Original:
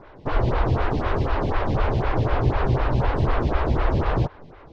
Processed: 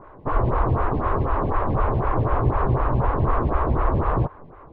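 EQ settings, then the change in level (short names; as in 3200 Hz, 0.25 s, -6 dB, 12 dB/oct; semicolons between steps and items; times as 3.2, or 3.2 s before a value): LPF 1500 Hz 12 dB/oct; bell 1100 Hz +8.5 dB 0.36 oct; 0.0 dB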